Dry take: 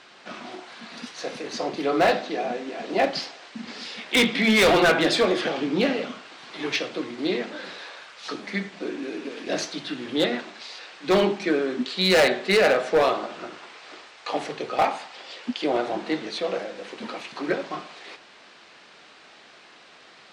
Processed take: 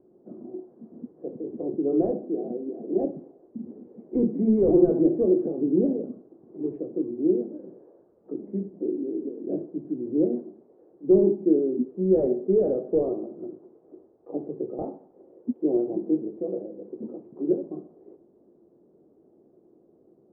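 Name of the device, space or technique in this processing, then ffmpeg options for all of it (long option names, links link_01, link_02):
under water: -af "lowpass=frequency=450:width=0.5412,lowpass=frequency=450:width=1.3066,equalizer=frequency=350:width_type=o:width=0.4:gain=7"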